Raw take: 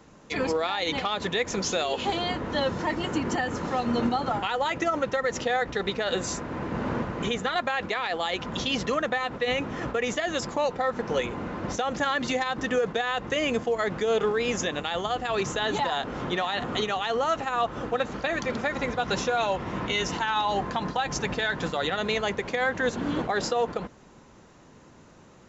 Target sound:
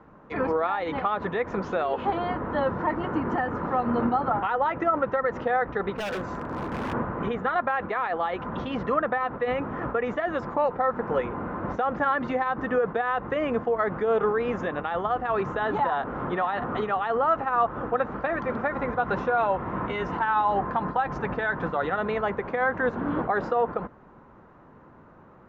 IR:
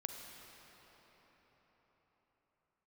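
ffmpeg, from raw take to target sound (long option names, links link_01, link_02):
-filter_complex "[0:a]lowpass=frequency=1300:width_type=q:width=1.6,asettb=1/sr,asplit=3[link_01][link_02][link_03];[link_01]atrim=end=5.924[link_04];[link_02]atrim=start=5.92:end=6.93,asetpts=PTS-STARTPTS,afade=type=in:duration=0.004:curve=qsin,afade=type=out:start_time=1.006:duration=0.004:curve=qsin,aeval=exprs='0.0562*(abs(mod(val(0)/0.0562+3,4)-2)-1)':channel_layout=same[link_05];[link_03]atrim=start=6.926[link_06];[link_04][link_05]acrossfade=duration=0.004:curve1=hsin:curve2=qsin[link_07];[link_07][link_06]acrossfade=duration=0.004:curve1=qsin:curve2=hsin"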